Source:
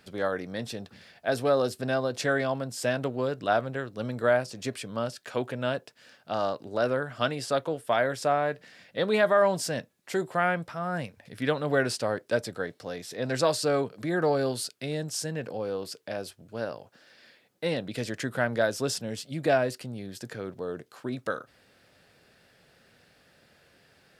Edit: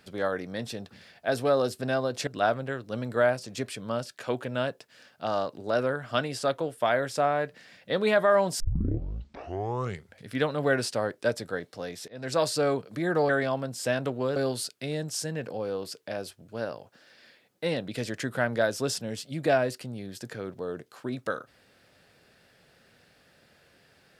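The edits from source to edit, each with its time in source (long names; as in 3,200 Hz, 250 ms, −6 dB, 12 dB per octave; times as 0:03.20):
0:02.27–0:03.34: move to 0:14.36
0:09.67: tape start 1.69 s
0:13.15–0:13.51: fade in, from −22.5 dB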